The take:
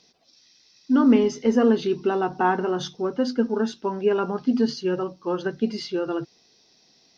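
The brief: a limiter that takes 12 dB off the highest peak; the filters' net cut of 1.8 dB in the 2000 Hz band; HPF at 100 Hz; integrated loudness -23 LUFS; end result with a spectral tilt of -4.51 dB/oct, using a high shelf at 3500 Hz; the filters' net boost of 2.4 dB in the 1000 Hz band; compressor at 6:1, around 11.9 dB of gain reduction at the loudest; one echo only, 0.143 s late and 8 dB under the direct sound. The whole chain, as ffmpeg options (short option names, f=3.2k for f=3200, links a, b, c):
-af "highpass=100,equalizer=f=1k:t=o:g=4,equalizer=f=2k:t=o:g=-7.5,highshelf=f=3.5k:g=9,acompressor=threshold=-26dB:ratio=6,alimiter=level_in=4.5dB:limit=-24dB:level=0:latency=1,volume=-4.5dB,aecho=1:1:143:0.398,volume=13.5dB"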